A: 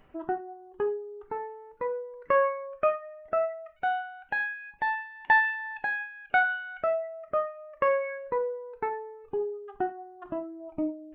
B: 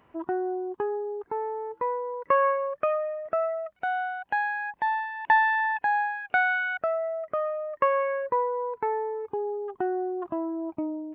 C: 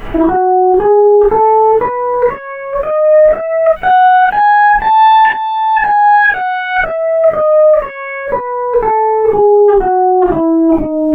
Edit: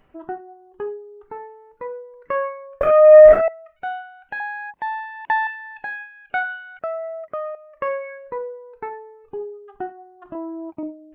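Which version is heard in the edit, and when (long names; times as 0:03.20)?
A
0:02.81–0:03.48: punch in from C
0:04.40–0:05.47: punch in from B
0:06.79–0:07.55: punch in from B
0:10.35–0:10.83: punch in from B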